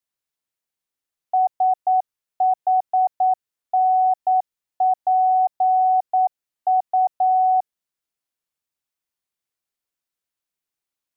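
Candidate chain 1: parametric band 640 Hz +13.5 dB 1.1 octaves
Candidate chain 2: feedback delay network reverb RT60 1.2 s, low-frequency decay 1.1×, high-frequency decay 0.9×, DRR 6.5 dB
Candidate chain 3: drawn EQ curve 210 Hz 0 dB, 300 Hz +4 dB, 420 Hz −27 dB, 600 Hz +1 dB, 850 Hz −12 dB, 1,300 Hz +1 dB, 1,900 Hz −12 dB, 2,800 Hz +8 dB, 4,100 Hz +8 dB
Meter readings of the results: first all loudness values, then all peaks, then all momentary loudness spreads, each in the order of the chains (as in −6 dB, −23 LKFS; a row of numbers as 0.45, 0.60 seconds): −9.0, −19.0, −27.5 LKFS; −2.0, −11.0, −20.0 dBFS; 7, 7, 7 LU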